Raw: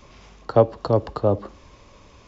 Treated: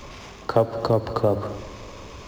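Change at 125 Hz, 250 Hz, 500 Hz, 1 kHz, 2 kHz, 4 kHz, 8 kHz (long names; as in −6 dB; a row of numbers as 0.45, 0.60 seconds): −1.5 dB, −1.0 dB, −1.5 dB, 0.0 dB, +4.5 dB, +5.0 dB, can't be measured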